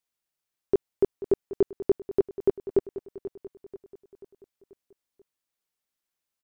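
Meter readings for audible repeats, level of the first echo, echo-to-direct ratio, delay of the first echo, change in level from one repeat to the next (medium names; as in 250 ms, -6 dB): 4, -14.5 dB, -13.0 dB, 486 ms, -6.0 dB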